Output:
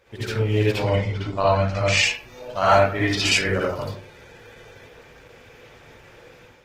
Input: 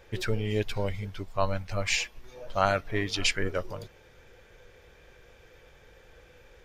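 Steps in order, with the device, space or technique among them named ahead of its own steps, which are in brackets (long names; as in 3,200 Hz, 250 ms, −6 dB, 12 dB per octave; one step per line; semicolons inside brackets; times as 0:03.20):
0:00.78–0:01.97: low-pass filter 6,700 Hz 12 dB per octave
far-field microphone of a smart speaker (convolution reverb RT60 0.45 s, pre-delay 54 ms, DRR −7 dB; high-pass filter 120 Hz 6 dB per octave; automatic gain control gain up to 7 dB; level −3 dB; Opus 16 kbit/s 48,000 Hz)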